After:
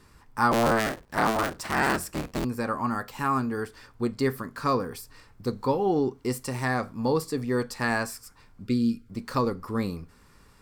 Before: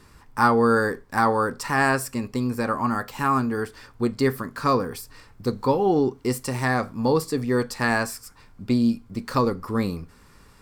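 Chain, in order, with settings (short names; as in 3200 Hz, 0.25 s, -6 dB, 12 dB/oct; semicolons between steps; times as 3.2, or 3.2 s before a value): 0.51–2.45 cycle switcher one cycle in 3, inverted; 8.67–9.09 brick-wall FIR band-stop 530–1200 Hz; gain -4 dB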